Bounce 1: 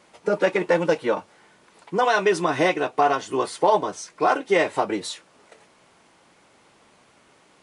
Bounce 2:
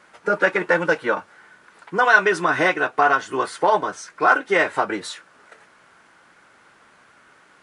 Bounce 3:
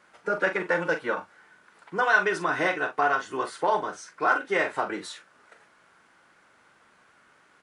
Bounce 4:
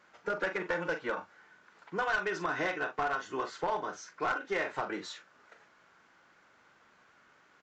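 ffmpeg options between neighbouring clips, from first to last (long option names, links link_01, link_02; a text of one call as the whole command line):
ffmpeg -i in.wav -af "equalizer=frequency=1500:width_type=o:width=0.78:gain=13,volume=-1.5dB" out.wav
ffmpeg -i in.wav -filter_complex "[0:a]asplit=2[link_01][link_02];[link_02]adelay=42,volume=-9dB[link_03];[link_01][link_03]amix=inputs=2:normalize=0,volume=-7dB" out.wav
ffmpeg -i in.wav -af "acompressor=threshold=-27dB:ratio=2,aresample=16000,aeval=exprs='clip(val(0),-1,0.0668)':channel_layout=same,aresample=44100,volume=-3.5dB" out.wav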